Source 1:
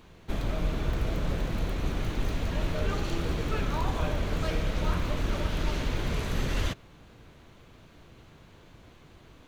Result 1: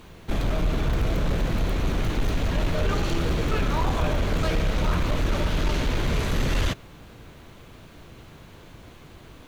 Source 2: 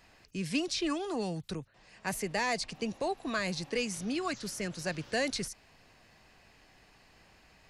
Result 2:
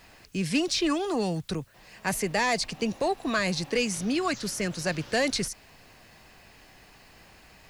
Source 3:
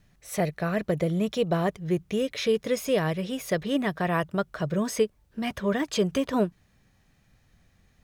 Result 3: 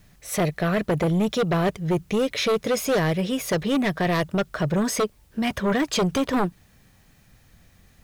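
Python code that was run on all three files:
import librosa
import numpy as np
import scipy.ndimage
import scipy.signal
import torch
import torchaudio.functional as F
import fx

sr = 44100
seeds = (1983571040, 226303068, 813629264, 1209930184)

y = fx.fold_sine(x, sr, drive_db=9, ceiling_db=-11.0)
y = fx.quant_dither(y, sr, seeds[0], bits=10, dither='triangular')
y = y * librosa.db_to_amplitude(-6.0)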